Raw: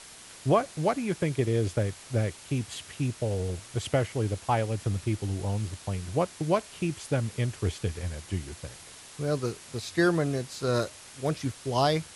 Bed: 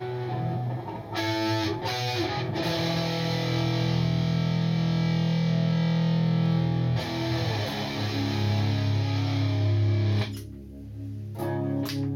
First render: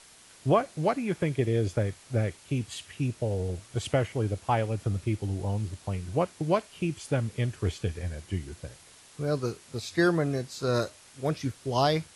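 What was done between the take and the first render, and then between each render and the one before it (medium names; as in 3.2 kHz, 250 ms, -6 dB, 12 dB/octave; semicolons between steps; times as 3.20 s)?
noise print and reduce 6 dB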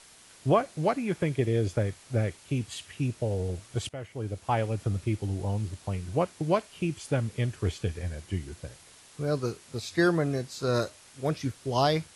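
3.89–4.63 s: fade in linear, from -19 dB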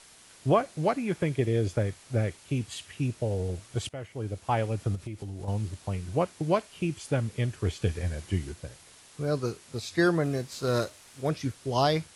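4.95–5.48 s: compression, threshold -33 dBFS; 7.82–8.52 s: gain +3 dB; 10.23–11.22 s: CVSD coder 64 kbps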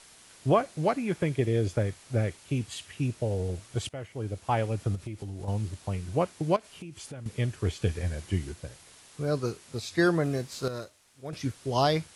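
6.56–7.26 s: compression 8:1, threshold -38 dBFS; 10.68–11.33 s: gain -10.5 dB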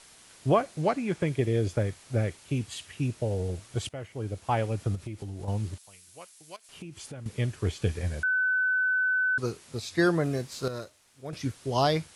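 0.82–1.27 s: low-pass 10 kHz 24 dB/octave; 5.78–6.69 s: pre-emphasis filter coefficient 0.97; 8.23–9.38 s: bleep 1.51 kHz -22.5 dBFS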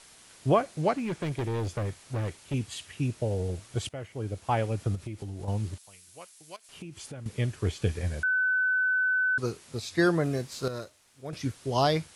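0.96–2.54 s: hard clipper -27.5 dBFS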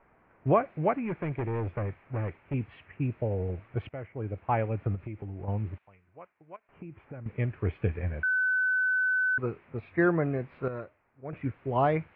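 level-controlled noise filter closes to 1.1 kHz, open at -26.5 dBFS; elliptic low-pass 2.4 kHz, stop band 70 dB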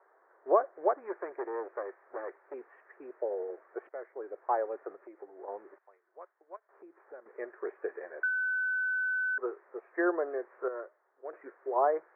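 Chebyshev band-pass 370–1800 Hz, order 4; low-pass that closes with the level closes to 1.4 kHz, closed at -25.5 dBFS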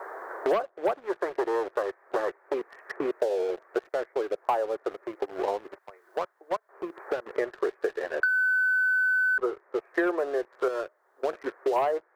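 waveshaping leveller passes 2; three bands compressed up and down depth 100%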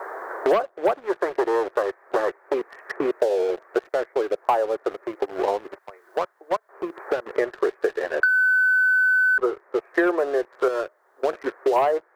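trim +5.5 dB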